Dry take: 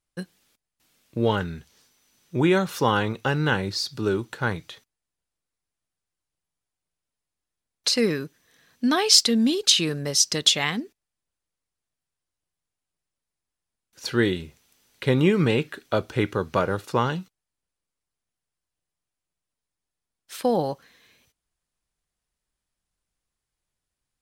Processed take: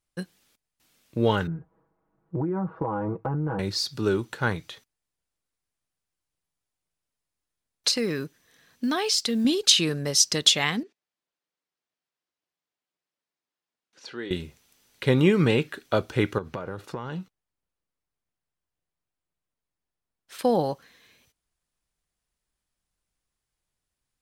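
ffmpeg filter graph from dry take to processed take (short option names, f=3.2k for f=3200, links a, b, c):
-filter_complex "[0:a]asettb=1/sr,asplit=3[a][b][c];[a]atrim=end=1.474[d];[b]atrim=start=1.47:end=3.59,asetpts=PTS-STARTPTS,afade=t=in:d=0.004:c=qsin,afade=t=out:st=2.116:d=0.004:c=qsin,lowpass=f=1.1k:w=0.5412,lowpass=f=1.1k:w=1.3066,aecho=1:1:6.2:0.82,atrim=end_sample=93492,acompressor=threshold=-23dB:ratio=16:attack=3.2:release=140:knee=1:detection=peak[e];[c]atrim=start=3.586[f];[d][e]acrossfade=d=0.004:c1=hsin:c2=qsin[g];[g][f]acrossfade=d=0.004:c1=qsin:c2=hsin,asettb=1/sr,asplit=3[h][i][j];[h]atrim=end=7.914[k];[i]atrim=start=7.91:end=9.45,asetpts=PTS-STARTPTS,afade=t=in:d=0.004:c=qsin,afade=t=out:st=1.536:d=0.004:c=qsin,acrusher=bits=9:mode=log:mix=0:aa=0.000001,acompressor=threshold=-24dB:ratio=2.5:attack=3.2:release=140:knee=1:detection=peak[l];[j]atrim=start=9.446[m];[k][l]acrossfade=d=0.004:c1=hsin:c2=qsin[n];[n][m]acrossfade=d=0.004:c1=qsin:c2=hsin,asettb=1/sr,asplit=3[o][p][q];[o]atrim=end=10.834[r];[p]atrim=start=10.83:end=14.31,asetpts=PTS-STARTPTS,afade=t=in:d=0.004:c=qsin,afade=t=out:st=3.476:d=0.004:c=qsin,acompressor=threshold=-52dB:ratio=1.5:attack=3.2:release=140:knee=1:detection=peak,highpass=240,lowpass=5.2k[s];[q]atrim=start=14.306[t];[r][s]acrossfade=d=0.004:c1=hsin:c2=qsin[u];[u][t]acrossfade=d=0.004:c1=qsin:c2=hsin,asettb=1/sr,asplit=3[v][w][x];[v]atrim=end=16.384[y];[w]atrim=start=16.38:end=20.39,asetpts=PTS-STARTPTS,afade=t=in:d=0.004:c=qsin,afade=t=out:st=4.006:d=0.004:c=qsin,highshelf=f=3.1k:g=-9,acompressor=threshold=-28dB:ratio=16:attack=3.2:release=140:knee=1:detection=peak[z];[x]atrim=start=20.386[aa];[y][z]acrossfade=d=0.004:c1=hsin:c2=qsin[ab];[ab][aa]acrossfade=d=0.004:c1=qsin:c2=hsin"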